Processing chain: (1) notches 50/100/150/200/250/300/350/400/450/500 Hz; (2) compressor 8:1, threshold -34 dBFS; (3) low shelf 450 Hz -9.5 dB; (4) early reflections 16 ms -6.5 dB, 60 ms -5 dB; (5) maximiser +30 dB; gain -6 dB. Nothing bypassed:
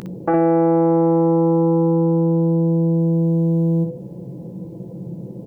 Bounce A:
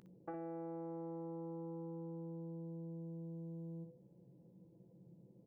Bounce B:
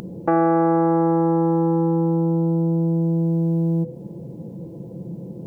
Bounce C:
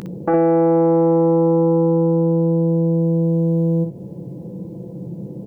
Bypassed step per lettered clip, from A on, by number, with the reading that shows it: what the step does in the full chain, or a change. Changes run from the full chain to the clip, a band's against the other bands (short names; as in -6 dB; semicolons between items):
5, crest factor change +4.5 dB; 4, crest factor change +2.5 dB; 1, 500 Hz band +2.5 dB